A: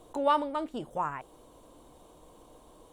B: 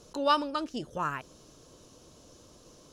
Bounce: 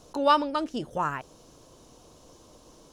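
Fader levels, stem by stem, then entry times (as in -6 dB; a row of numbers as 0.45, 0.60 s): -2.5, -0.5 dB; 0.00, 0.00 s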